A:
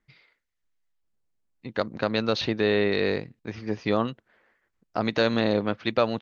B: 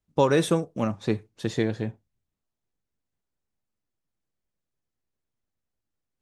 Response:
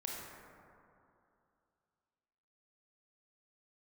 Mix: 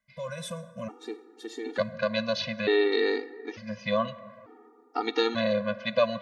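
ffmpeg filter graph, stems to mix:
-filter_complex "[0:a]highpass=f=110:p=1,volume=1dB,asplit=2[a][b];[b]volume=-12.5dB[c];[1:a]alimiter=limit=-18.5dB:level=0:latency=1:release=81,volume=-4dB,asplit=2[d][e];[e]volume=-10.5dB[f];[2:a]atrim=start_sample=2205[g];[c][f]amix=inputs=2:normalize=0[h];[h][g]afir=irnorm=-1:irlink=0[i];[a][d][i]amix=inputs=3:normalize=0,lowshelf=f=150:g=-11,afftfilt=real='re*gt(sin(2*PI*0.56*pts/sr)*(1-2*mod(floor(b*sr/1024/240),2)),0)':imag='im*gt(sin(2*PI*0.56*pts/sr)*(1-2*mod(floor(b*sr/1024/240),2)),0)':win_size=1024:overlap=0.75"

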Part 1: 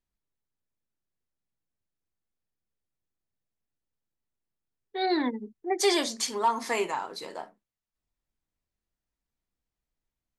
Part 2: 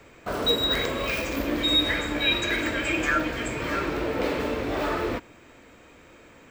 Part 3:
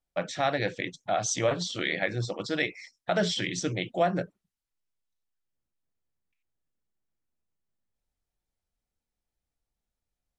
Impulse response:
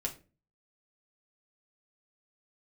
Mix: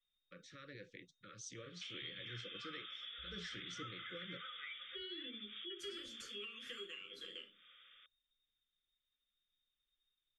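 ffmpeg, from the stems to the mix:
-filter_complex "[0:a]acompressor=threshold=-34dB:ratio=6,volume=-2dB,asplit=3[a][b][c];[b]volume=-17dB[d];[1:a]adelay=1550,volume=-12.5dB[e];[2:a]bandreject=f=7.5k:w=10,alimiter=limit=-19dB:level=0:latency=1:release=211,adelay=150,volume=-19.5dB[f];[c]apad=whole_len=355319[g];[e][g]sidechaincompress=threshold=-50dB:ratio=8:attack=16:release=176[h];[a][h]amix=inputs=2:normalize=0,lowpass=f=3.1k:t=q:w=0.5098,lowpass=f=3.1k:t=q:w=0.6013,lowpass=f=3.1k:t=q:w=0.9,lowpass=f=3.1k:t=q:w=2.563,afreqshift=-3700,acompressor=threshold=-51dB:ratio=3,volume=0dB[i];[3:a]atrim=start_sample=2205[j];[d][j]afir=irnorm=-1:irlink=0[k];[f][i][k]amix=inputs=3:normalize=0,asuperstop=centerf=790:order=20:qfactor=1.4"

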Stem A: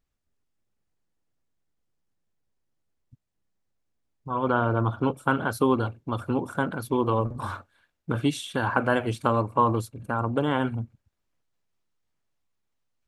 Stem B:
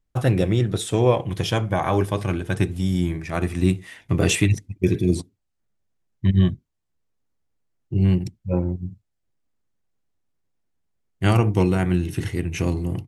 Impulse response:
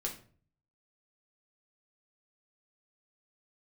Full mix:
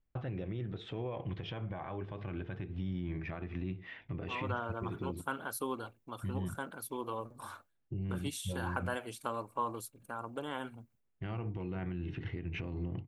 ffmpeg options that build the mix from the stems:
-filter_complex "[0:a]agate=range=-33dB:threshold=-44dB:ratio=3:detection=peak,aemphasis=mode=production:type=bsi,volume=-13dB[a];[1:a]lowpass=f=3.2k:w=0.5412,lowpass=f=3.2k:w=1.3066,acompressor=threshold=-21dB:ratio=3,alimiter=level_in=0.5dB:limit=-24dB:level=0:latency=1:release=216,volume=-0.5dB,volume=-5.5dB[b];[a][b]amix=inputs=2:normalize=0"

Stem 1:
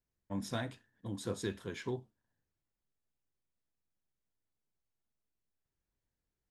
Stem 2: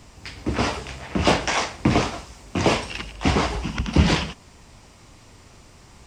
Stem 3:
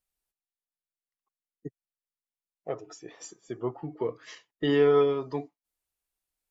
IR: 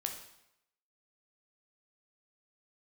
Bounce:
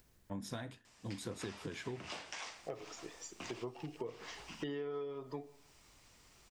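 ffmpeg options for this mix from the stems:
-filter_complex "[0:a]acompressor=mode=upward:threshold=-51dB:ratio=2.5,volume=0dB[a];[1:a]tiltshelf=f=970:g=-5,acompressor=threshold=-27dB:ratio=4,lowshelf=f=130:g=-12,adelay=850,volume=-16dB[b];[2:a]volume=-7dB,asplit=3[c][d][e];[d]volume=-10dB[f];[e]apad=whole_len=304759[g];[b][g]sidechaincompress=threshold=-43dB:ratio=8:attack=7.7:release=414[h];[3:a]atrim=start_sample=2205[i];[f][i]afir=irnorm=-1:irlink=0[j];[a][h][c][j]amix=inputs=4:normalize=0,acompressor=threshold=-38dB:ratio=12"

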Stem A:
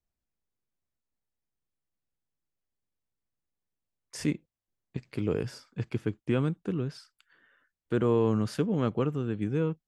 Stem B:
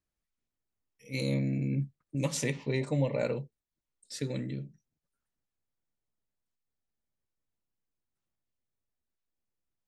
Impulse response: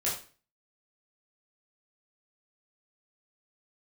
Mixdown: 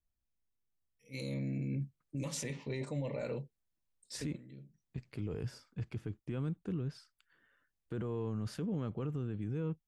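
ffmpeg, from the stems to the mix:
-filter_complex "[0:a]lowshelf=f=130:g=11,volume=-7.5dB,asplit=2[a][b];[1:a]volume=-4dB,afade=t=in:st=0.88:d=0.67:silence=0.251189[c];[b]apad=whole_len=435634[d];[c][d]sidechaincompress=threshold=-46dB:ratio=10:attack=38:release=531[e];[a][e]amix=inputs=2:normalize=0,alimiter=level_in=6dB:limit=-24dB:level=0:latency=1:release=14,volume=-6dB"

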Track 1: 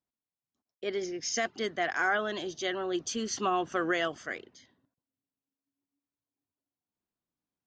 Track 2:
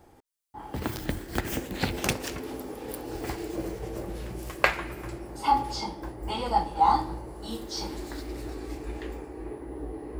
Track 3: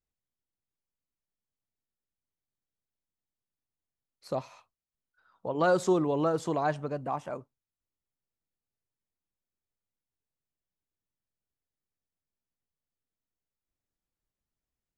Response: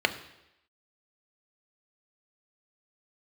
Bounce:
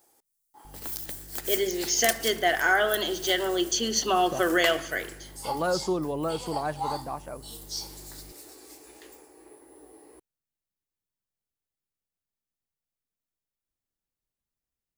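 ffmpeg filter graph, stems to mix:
-filter_complex "[0:a]highshelf=f=4.7k:g=9,aeval=exprs='val(0)+0.00447*(sin(2*PI*50*n/s)+sin(2*PI*2*50*n/s)/2+sin(2*PI*3*50*n/s)/3+sin(2*PI*4*50*n/s)/4+sin(2*PI*5*50*n/s)/5)':c=same,adelay=650,volume=-1.5dB,asplit=2[a][b];[b]volume=-8dB[c];[1:a]highpass=f=130:p=1,bass=f=250:g=-13,treble=f=4k:g=15,volume=-10.5dB[d];[2:a]volume=-2.5dB[e];[3:a]atrim=start_sample=2205[f];[c][f]afir=irnorm=-1:irlink=0[g];[a][d][e][g]amix=inputs=4:normalize=0,crystalizer=i=0.5:c=0"

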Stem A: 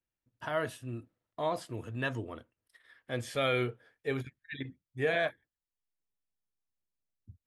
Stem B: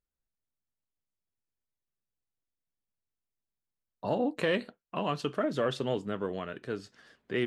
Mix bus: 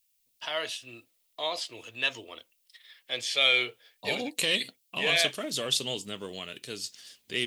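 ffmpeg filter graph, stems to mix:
-filter_complex "[0:a]acrossover=split=360 5700:gain=0.141 1 0.0794[a][b][c];[a][b][c]amix=inputs=3:normalize=0,volume=-1dB[d];[1:a]highshelf=f=7.5k:g=10.5,volume=-6dB[e];[d][e]amix=inputs=2:normalize=0,aexciter=amount=4.8:drive=8.7:freq=2.3k"

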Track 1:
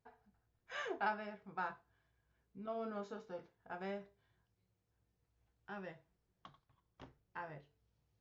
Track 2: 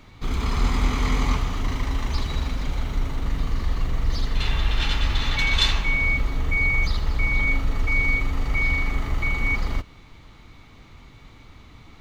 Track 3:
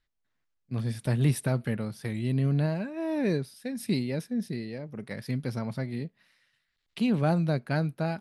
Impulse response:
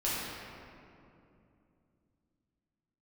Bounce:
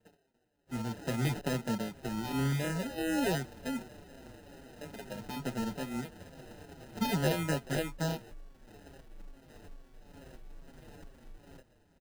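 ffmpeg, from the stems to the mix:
-filter_complex "[0:a]highshelf=f=2.2k:g=8,acompressor=mode=upward:threshold=-45dB:ratio=2.5,flanger=delay=2:depth=1.8:regen=-39:speed=1.1:shape=sinusoidal,volume=-0.5dB[a];[1:a]adelay=1800,volume=-8.5dB[b];[2:a]deesser=0.6,highpass=f=150:w=0.5412,highpass=f=150:w=1.3066,volume=0dB,asplit=3[c][d][e];[c]atrim=end=3.82,asetpts=PTS-STARTPTS,afade=t=out:st=3.816:d=0.004:c=hsin[f];[d]atrim=start=3.82:end=4.81,asetpts=PTS-STARTPTS,volume=0[g];[e]atrim=start=4.81,asetpts=PTS-STARTPTS,afade=t=in:d=0.004:c=hsin[h];[f][g][h]concat=n=3:v=0:a=1[i];[a][b]amix=inputs=2:normalize=0,highpass=420,lowpass=6k,acompressor=threshold=-43dB:ratio=16,volume=0dB[j];[i][j]amix=inputs=2:normalize=0,acrusher=samples=39:mix=1:aa=0.000001,asplit=2[k][l];[l]adelay=6.2,afreqshift=-2.3[m];[k][m]amix=inputs=2:normalize=1"

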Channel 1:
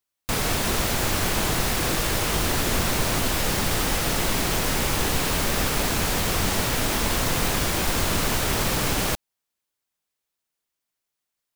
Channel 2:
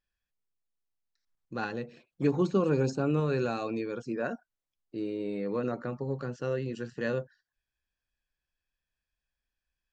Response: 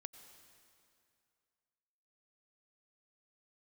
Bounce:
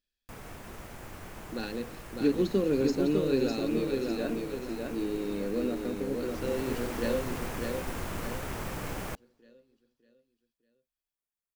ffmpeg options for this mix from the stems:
-filter_complex "[0:a]equalizer=f=4k:t=o:w=1.1:g=-9.5,acrossover=split=5000[a][b];[b]acompressor=threshold=-35dB:ratio=4:attack=1:release=60[c];[a][c]amix=inputs=2:normalize=0,acrusher=bits=4:mode=log:mix=0:aa=0.000001,volume=-11.5dB,afade=t=in:st=6.17:d=0.56:silence=0.398107,asplit=2[d][e];[e]volume=-22dB[f];[1:a]equalizer=f=125:t=o:w=1:g=-10,equalizer=f=250:t=o:w=1:g=8,equalizer=f=500:t=o:w=1:g=4,equalizer=f=1k:t=o:w=1:g=-12,equalizer=f=4k:t=o:w=1:g=10,volume=-3.5dB,asplit=2[g][h];[h]volume=-4dB[i];[2:a]atrim=start_sample=2205[j];[f][j]afir=irnorm=-1:irlink=0[k];[i]aecho=0:1:603|1206|1809|2412|3015|3618:1|0.41|0.168|0.0689|0.0283|0.0116[l];[d][g][k][l]amix=inputs=4:normalize=0"

